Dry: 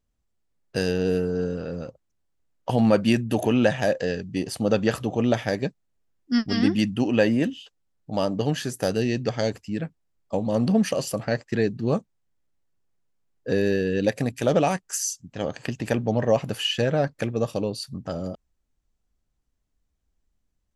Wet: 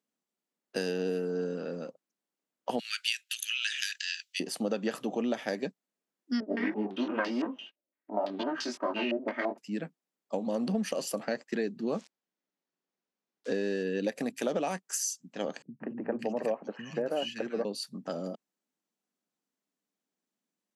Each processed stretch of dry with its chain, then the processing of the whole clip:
2.79–4.4 steep high-pass 1400 Hz 72 dB/oct + resonant high shelf 2200 Hz +8.5 dB, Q 1.5
6.4–9.58 minimum comb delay 3.2 ms + chorus 2.8 Hz, delay 18.5 ms, depth 2.6 ms + stepped low-pass 5.9 Hz 580–5100 Hz
11.94–13.83 switching spikes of -28.5 dBFS + LPF 6600 Hz 24 dB/oct
15.62–17.65 high shelf 3900 Hz -10.5 dB + notch 3500 Hz, Q 5.6 + three bands offset in time lows, mids, highs 0.18/0.57 s, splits 200/1700 Hz
whole clip: steep high-pass 190 Hz 36 dB/oct; compressor 4:1, threshold -24 dBFS; gain -3.5 dB

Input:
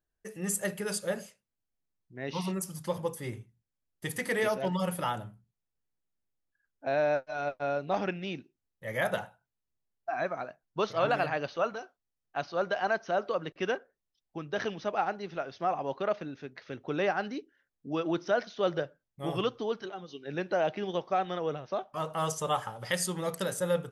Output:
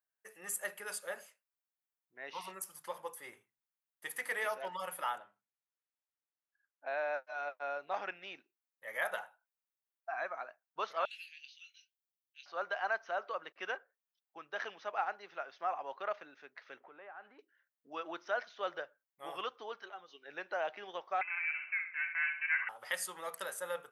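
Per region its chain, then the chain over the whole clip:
5.18–7.14 LPF 4600 Hz + low shelf 110 Hz -11.5 dB
11.05–12.46 steep high-pass 2600 Hz 48 dB/oct + doubler 23 ms -7.5 dB
16.8–17.39 G.711 law mismatch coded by mu + Gaussian blur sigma 3.3 samples + compressor 2.5:1, threshold -47 dBFS
21.21–22.69 inverted band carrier 2800 Hz + flutter echo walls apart 11 m, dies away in 0.5 s
whole clip: HPF 1200 Hz 12 dB/oct; bell 5300 Hz -14.5 dB 2.6 oct; gain +4 dB

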